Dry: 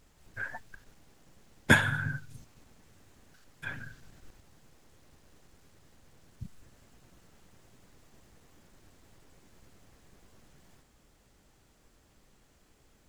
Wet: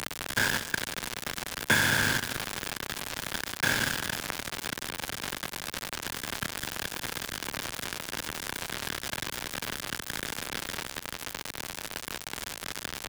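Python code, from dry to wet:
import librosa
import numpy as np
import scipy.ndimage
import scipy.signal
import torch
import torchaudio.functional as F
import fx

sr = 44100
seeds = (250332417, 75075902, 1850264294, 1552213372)

y = fx.bin_compress(x, sr, power=0.2)
y = scipy.signal.sosfilt(scipy.signal.butter(4, 63.0, 'highpass', fs=sr, output='sos'), y)
y = fx.low_shelf(y, sr, hz=470.0, db=-6.5)
y = np.where(np.abs(y) >= 10.0 ** (-20.5 / 20.0), y, 0.0)
y = y + 10.0 ** (-17.5 / 20.0) * np.pad(y, (int(193 * sr / 1000.0), 0))[:len(y)]
y = fx.band_squash(y, sr, depth_pct=40)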